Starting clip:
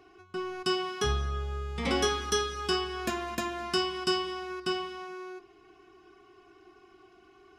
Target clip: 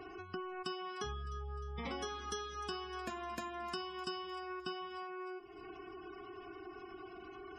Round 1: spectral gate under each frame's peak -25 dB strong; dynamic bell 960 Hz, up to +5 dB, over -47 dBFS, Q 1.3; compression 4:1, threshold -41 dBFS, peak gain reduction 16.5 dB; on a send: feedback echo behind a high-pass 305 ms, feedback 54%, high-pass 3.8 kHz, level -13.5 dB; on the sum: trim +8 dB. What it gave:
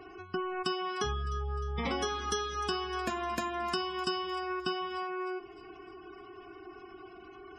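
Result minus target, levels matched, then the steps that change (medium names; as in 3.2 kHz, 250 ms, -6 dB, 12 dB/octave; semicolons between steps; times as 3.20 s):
compression: peak gain reduction -8.5 dB
change: compression 4:1, threshold -52.5 dBFS, peak gain reduction 25 dB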